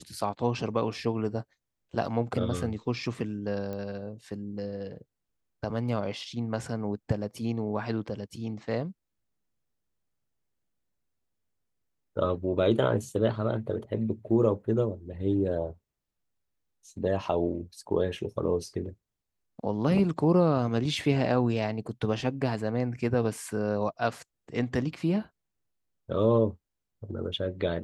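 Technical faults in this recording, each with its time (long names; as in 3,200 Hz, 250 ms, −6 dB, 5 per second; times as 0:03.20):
0:03.73: click −24 dBFS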